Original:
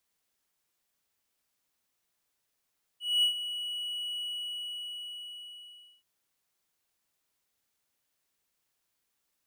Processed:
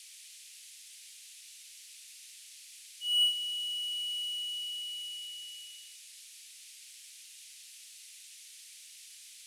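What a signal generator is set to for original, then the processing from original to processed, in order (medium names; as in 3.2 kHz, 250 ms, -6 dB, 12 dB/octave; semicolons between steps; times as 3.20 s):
ADSR triangle 2.93 kHz, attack 230 ms, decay 100 ms, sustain -12 dB, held 1.20 s, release 1830 ms -19 dBFS
band noise 2.3–11 kHz -52 dBFS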